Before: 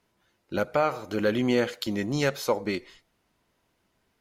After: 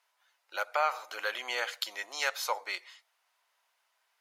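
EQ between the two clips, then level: high-pass 760 Hz 24 dB/octave; 0.0 dB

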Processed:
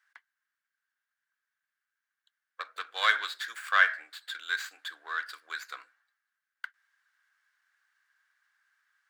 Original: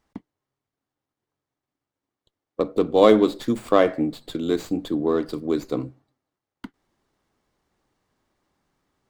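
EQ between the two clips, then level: dynamic bell 4.1 kHz, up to +4 dB, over -41 dBFS, Q 1.4; ladder high-pass 1.5 kHz, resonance 80%; +9.0 dB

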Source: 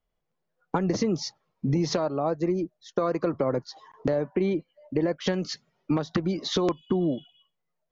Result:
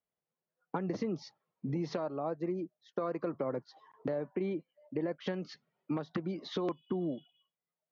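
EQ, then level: band-pass 130–3300 Hz; -9.0 dB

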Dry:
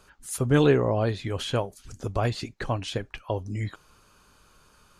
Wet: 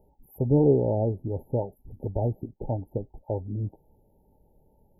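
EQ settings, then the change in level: brick-wall FIR band-stop 920–11000 Hz; peaking EQ 8.1 kHz -10 dB 2.4 oct; band-stop 710 Hz, Q 12; 0.0 dB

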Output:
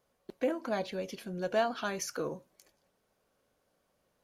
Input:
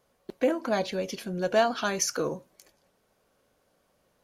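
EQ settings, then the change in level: dynamic bell 6 kHz, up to -5 dB, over -46 dBFS, Q 1.3; -6.0 dB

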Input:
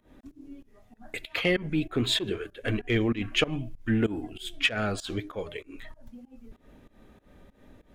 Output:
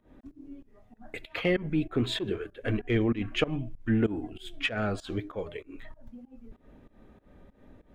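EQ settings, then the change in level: treble shelf 2.7 kHz -11 dB; 0.0 dB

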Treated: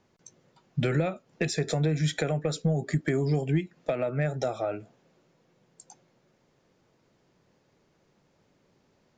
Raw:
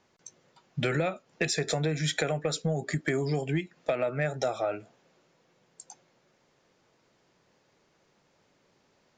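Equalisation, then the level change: bass shelf 430 Hz +9 dB; -3.5 dB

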